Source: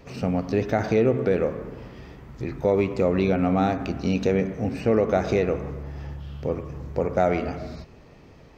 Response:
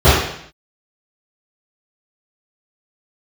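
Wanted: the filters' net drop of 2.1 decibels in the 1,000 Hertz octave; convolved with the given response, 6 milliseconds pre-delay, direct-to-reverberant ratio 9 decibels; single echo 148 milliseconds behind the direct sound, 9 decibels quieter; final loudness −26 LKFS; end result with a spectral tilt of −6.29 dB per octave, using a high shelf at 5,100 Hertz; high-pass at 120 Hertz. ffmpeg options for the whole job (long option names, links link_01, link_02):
-filter_complex "[0:a]highpass=120,equalizer=frequency=1000:width_type=o:gain=-3,highshelf=frequency=5100:gain=-9,aecho=1:1:148:0.355,asplit=2[link_01][link_02];[1:a]atrim=start_sample=2205,adelay=6[link_03];[link_02][link_03]afir=irnorm=-1:irlink=0,volume=-39dB[link_04];[link_01][link_04]amix=inputs=2:normalize=0,volume=-3dB"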